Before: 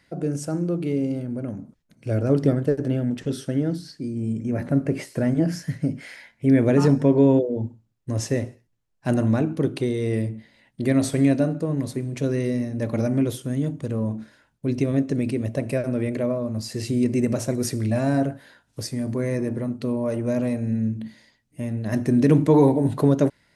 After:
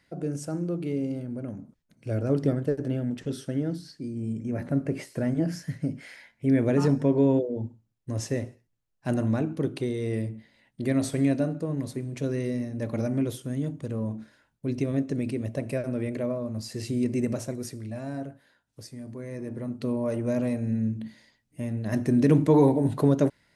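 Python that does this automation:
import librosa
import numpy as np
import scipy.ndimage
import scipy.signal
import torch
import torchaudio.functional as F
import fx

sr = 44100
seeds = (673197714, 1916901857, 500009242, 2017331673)

y = fx.gain(x, sr, db=fx.line((17.29, -5.0), (17.82, -13.0), (19.26, -13.0), (19.84, -3.0)))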